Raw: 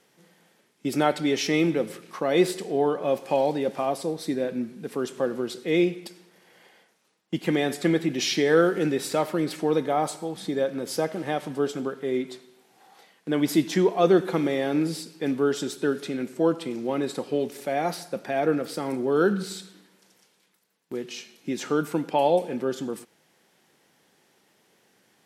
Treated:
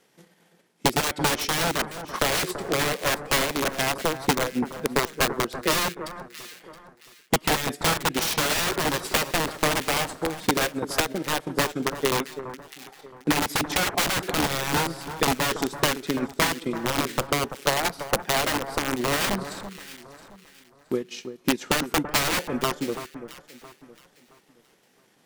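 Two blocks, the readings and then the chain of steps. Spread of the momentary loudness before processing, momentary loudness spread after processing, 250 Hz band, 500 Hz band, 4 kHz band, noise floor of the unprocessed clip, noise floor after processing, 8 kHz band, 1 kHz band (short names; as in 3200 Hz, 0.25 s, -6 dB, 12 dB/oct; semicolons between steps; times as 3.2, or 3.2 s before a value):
11 LU, 13 LU, -3.5 dB, -4.5 dB, +8.5 dB, -65 dBFS, -61 dBFS, +10.0 dB, +3.5 dB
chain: wrapped overs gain 20.5 dB; transient shaper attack +9 dB, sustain -9 dB; echo with dull and thin repeats by turns 0.335 s, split 1600 Hz, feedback 54%, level -10.5 dB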